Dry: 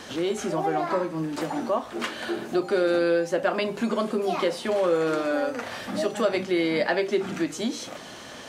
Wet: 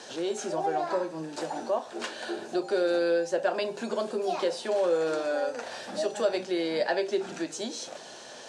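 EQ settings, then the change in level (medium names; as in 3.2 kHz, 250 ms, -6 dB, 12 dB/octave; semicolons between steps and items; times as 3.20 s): cabinet simulation 190–9200 Hz, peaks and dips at 200 Hz -5 dB, 280 Hz -8 dB, 1.2 kHz -10 dB, 2.1 kHz -10 dB, 3.1 kHz -5 dB; bass shelf 330 Hz -5 dB; 0.0 dB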